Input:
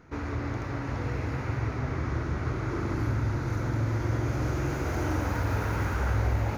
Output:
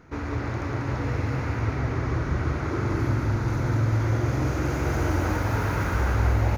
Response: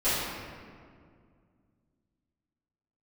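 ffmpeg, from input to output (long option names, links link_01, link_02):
-af "aecho=1:1:191:0.631,volume=2.5dB"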